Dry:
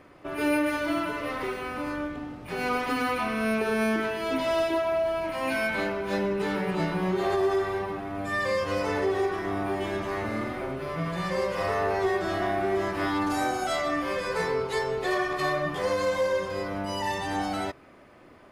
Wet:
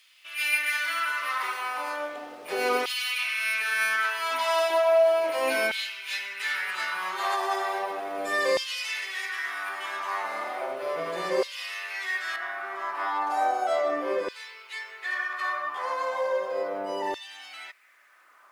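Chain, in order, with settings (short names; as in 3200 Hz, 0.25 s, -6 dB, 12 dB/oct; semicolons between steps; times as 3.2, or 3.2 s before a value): high shelf 2500 Hz +9 dB, from 9.69 s +4 dB, from 12.36 s -8.5 dB; bit-crush 11-bit; LFO high-pass saw down 0.35 Hz 360–3400 Hz; gain -1.5 dB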